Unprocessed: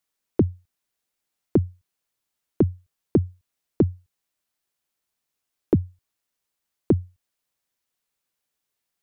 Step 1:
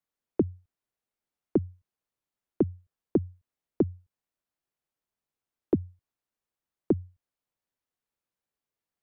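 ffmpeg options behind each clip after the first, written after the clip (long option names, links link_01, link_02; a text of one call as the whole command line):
ffmpeg -i in.wav -filter_complex "[0:a]highshelf=frequency=2000:gain=-11,acrossover=split=210|790[link_01][link_02][link_03];[link_01]alimiter=level_in=2dB:limit=-24dB:level=0:latency=1:release=137,volume=-2dB[link_04];[link_04][link_02][link_03]amix=inputs=3:normalize=0,volume=-3dB" out.wav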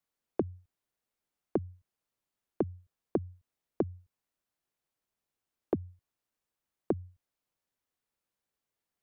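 ffmpeg -i in.wav -af "acompressor=threshold=-28dB:ratio=6,volume=1.5dB" out.wav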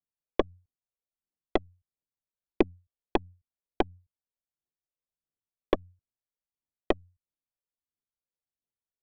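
ffmpeg -i in.wav -af "adynamicsmooth=sensitivity=5:basefreq=1100,aeval=exprs='0.178*(cos(1*acos(clip(val(0)/0.178,-1,1)))-cos(1*PI/2))+0.00224*(cos(3*acos(clip(val(0)/0.178,-1,1)))-cos(3*PI/2))+0.02*(cos(4*acos(clip(val(0)/0.178,-1,1)))-cos(4*PI/2))+0.0282*(cos(7*acos(clip(val(0)/0.178,-1,1)))-cos(7*PI/2))':channel_layout=same,aphaser=in_gain=1:out_gain=1:delay=2.2:decay=0.5:speed=1.5:type=triangular,volume=6dB" out.wav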